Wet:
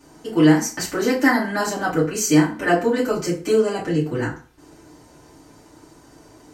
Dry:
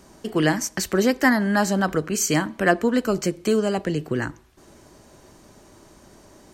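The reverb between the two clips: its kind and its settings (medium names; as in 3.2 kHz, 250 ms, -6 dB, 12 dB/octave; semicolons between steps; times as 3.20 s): FDN reverb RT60 0.4 s, low-frequency decay 0.9×, high-frequency decay 0.7×, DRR -9 dB; trim -8 dB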